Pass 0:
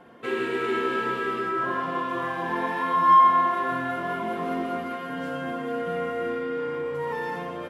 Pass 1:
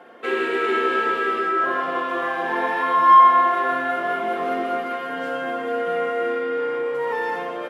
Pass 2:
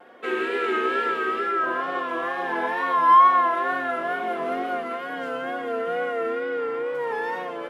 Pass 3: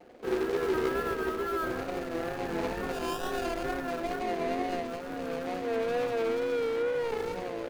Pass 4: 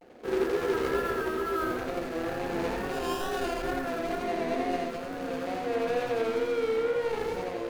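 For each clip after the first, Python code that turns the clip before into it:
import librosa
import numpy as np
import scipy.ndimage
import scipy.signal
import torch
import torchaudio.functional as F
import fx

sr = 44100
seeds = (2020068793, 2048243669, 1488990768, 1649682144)

y1 = scipy.signal.sosfilt(scipy.signal.butter(2, 410.0, 'highpass', fs=sr, output='sos'), x)
y1 = fx.high_shelf(y1, sr, hz=3900.0, db=-7.0)
y1 = fx.notch(y1, sr, hz=1000.0, q=8.8)
y1 = y1 * librosa.db_to_amplitude(7.5)
y2 = fx.vibrato(y1, sr, rate_hz=2.2, depth_cents=66.0)
y2 = y2 * librosa.db_to_amplitude(-3.0)
y3 = scipy.ndimage.median_filter(y2, 41, mode='constant')
y4 = fx.vibrato(y3, sr, rate_hz=0.41, depth_cents=37.0)
y4 = y4 + 10.0 ** (-3.5 / 20.0) * np.pad(y4, (int(85 * sr / 1000.0), 0))[:len(y4)]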